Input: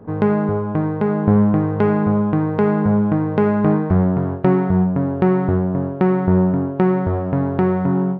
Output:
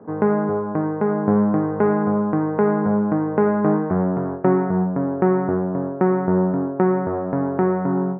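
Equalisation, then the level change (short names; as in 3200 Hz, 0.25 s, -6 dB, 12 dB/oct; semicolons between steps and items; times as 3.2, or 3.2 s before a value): HPF 210 Hz 12 dB/oct; LPF 1800 Hz 24 dB/oct; 0.0 dB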